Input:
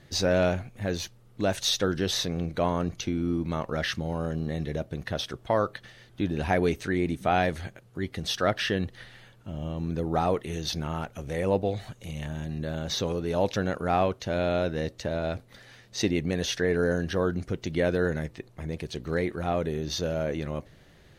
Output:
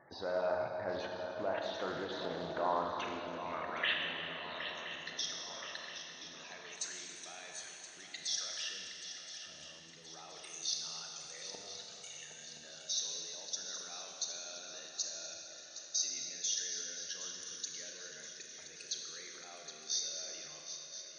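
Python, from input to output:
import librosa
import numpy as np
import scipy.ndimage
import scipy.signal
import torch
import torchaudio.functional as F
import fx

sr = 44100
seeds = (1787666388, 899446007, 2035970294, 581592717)

y = fx.level_steps(x, sr, step_db=21)
y = fx.filter_sweep_bandpass(y, sr, from_hz=930.0, to_hz=6600.0, start_s=2.67, end_s=4.96, q=2.0)
y = fx.spec_topn(y, sr, count=64)
y = fx.echo_swing(y, sr, ms=1023, ratio=3, feedback_pct=52, wet_db=-10.5)
y = fx.rev_schroeder(y, sr, rt60_s=2.6, comb_ms=27, drr_db=1.0)
y = fx.doppler_dist(y, sr, depth_ms=0.18)
y = y * 10.0 ** (14.0 / 20.0)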